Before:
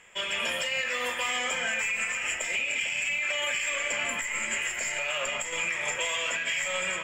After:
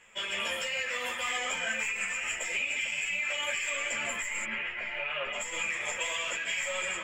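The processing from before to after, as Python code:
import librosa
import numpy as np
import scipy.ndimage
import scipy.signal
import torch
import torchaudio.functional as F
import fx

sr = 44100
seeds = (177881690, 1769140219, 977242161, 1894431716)

y = fx.lowpass(x, sr, hz=3200.0, slope=24, at=(4.43, 5.32), fade=0.02)
y = fx.ensemble(y, sr)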